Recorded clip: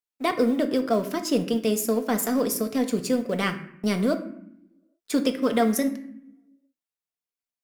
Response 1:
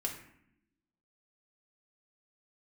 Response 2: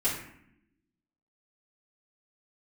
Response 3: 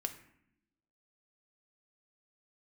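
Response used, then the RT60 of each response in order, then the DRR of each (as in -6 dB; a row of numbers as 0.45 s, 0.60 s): 3; 0.70 s, 0.70 s, 0.70 s; -0.5 dB, -10.0 dB, 5.5 dB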